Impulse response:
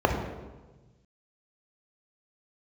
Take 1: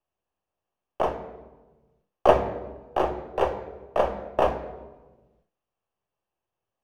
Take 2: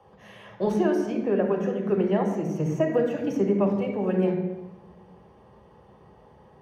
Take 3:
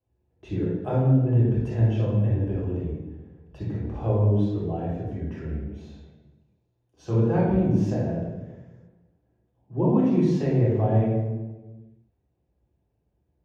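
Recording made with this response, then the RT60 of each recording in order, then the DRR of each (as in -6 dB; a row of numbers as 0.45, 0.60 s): 2; 1.2, 1.2, 1.2 s; 8.0, 2.0, -6.5 dB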